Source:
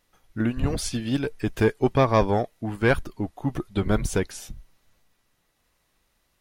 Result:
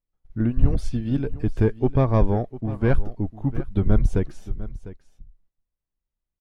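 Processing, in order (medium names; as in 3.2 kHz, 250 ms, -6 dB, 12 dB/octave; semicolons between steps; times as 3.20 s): tilt EQ -3.5 dB/octave; gate -38 dBFS, range -22 dB; on a send: delay 701 ms -16 dB; on the sum: trim -6 dB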